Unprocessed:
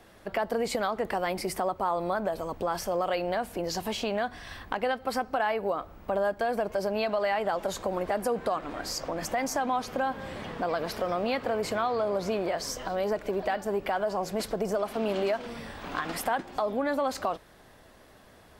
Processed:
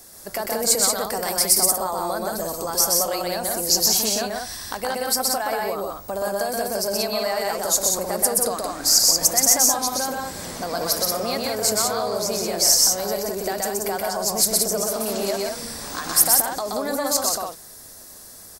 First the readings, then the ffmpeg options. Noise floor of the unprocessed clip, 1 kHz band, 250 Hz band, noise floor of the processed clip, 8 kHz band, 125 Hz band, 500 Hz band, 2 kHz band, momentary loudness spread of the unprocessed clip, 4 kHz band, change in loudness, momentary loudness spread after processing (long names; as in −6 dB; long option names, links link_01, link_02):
−55 dBFS, +3.0 dB, +3.0 dB, −43 dBFS, +24.5 dB, +3.0 dB, +3.0 dB, +3.0 dB, 5 LU, +16.0 dB, +10.0 dB, 15 LU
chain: -af "aexciter=amount=11.3:drive=4.5:freq=4500,aecho=1:1:125.4|180.8:0.794|0.631,aeval=exprs='0.891*(cos(1*acos(clip(val(0)/0.891,-1,1)))-cos(1*PI/2))+0.0178*(cos(4*acos(clip(val(0)/0.891,-1,1)))-cos(4*PI/2))':channel_layout=same"